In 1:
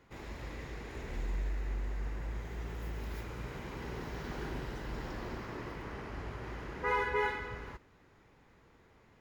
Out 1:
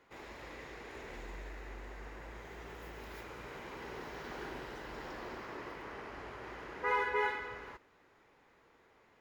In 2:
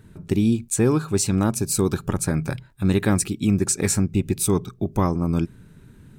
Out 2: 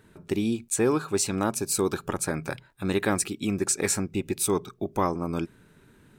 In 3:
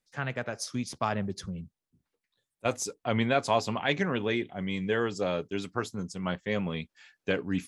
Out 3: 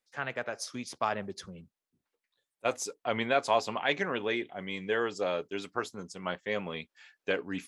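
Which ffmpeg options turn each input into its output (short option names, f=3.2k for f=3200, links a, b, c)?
-af "bass=f=250:g=-13,treble=f=4k:g=-3"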